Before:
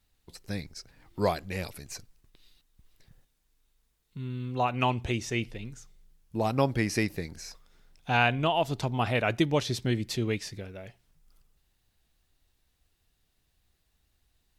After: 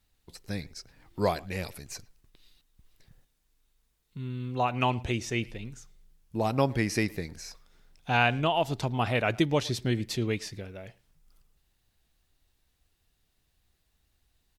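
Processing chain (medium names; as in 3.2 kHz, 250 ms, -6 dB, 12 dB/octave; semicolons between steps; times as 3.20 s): speakerphone echo 110 ms, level -22 dB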